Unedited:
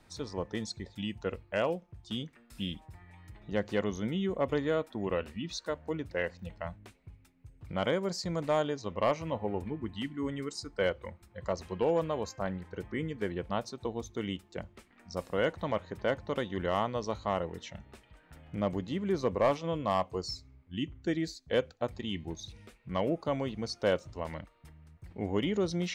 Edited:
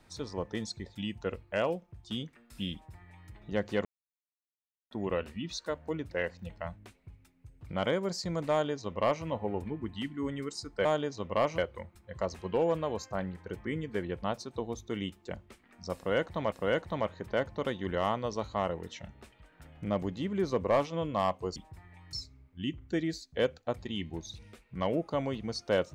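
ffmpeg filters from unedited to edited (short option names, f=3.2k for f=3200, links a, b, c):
-filter_complex "[0:a]asplit=8[a][b][c][d][e][f][g][h];[a]atrim=end=3.85,asetpts=PTS-STARTPTS,afade=t=out:st=3.846:d=0.004:c=hsin[i];[b]atrim=start=3.85:end=4.91,asetpts=PTS-STARTPTS,volume=0[j];[c]atrim=start=4.91:end=10.852,asetpts=PTS-STARTPTS,afade=t=in:d=0.004:c=hsin[k];[d]atrim=start=8.508:end=9.242[l];[e]atrim=start=10.848:end=15.792[m];[f]atrim=start=15.228:end=20.272[n];[g]atrim=start=2.728:end=3.302[o];[h]atrim=start=20.268[p];[i][j][k]concat=n=3:v=0:a=1[q];[q][l]acrossfade=d=0.004:c1=hsin:c2=hsin[r];[r][m]acrossfade=d=0.004:c1=hsin:c2=hsin[s];[s][n]acrossfade=d=0.004:c1=hsin:c2=hsin[t];[t][o]acrossfade=d=0.004:c1=hsin:c2=hsin[u];[u][p]acrossfade=d=0.004:c1=hsin:c2=hsin"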